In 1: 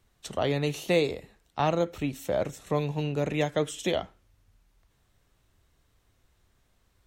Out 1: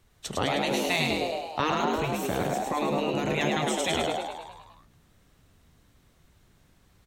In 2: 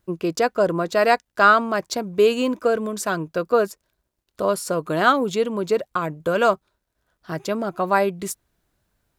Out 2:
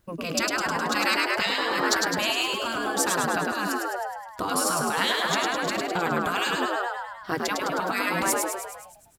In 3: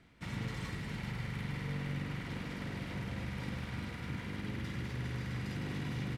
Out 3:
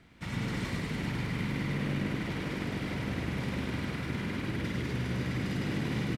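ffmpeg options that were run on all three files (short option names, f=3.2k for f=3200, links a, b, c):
-filter_complex "[0:a]asplit=9[a][b][c][d][e][f][g][h][i];[b]adelay=104,afreqshift=61,volume=-4dB[j];[c]adelay=208,afreqshift=122,volume=-8.6dB[k];[d]adelay=312,afreqshift=183,volume=-13.2dB[l];[e]adelay=416,afreqshift=244,volume=-17.7dB[m];[f]adelay=520,afreqshift=305,volume=-22.3dB[n];[g]adelay=624,afreqshift=366,volume=-26.9dB[o];[h]adelay=728,afreqshift=427,volume=-31.5dB[p];[i]adelay=832,afreqshift=488,volume=-36.1dB[q];[a][j][k][l][m][n][o][p][q]amix=inputs=9:normalize=0,afftfilt=real='re*lt(hypot(re,im),0.251)':imag='im*lt(hypot(re,im),0.251)':win_size=1024:overlap=0.75,volume=4dB"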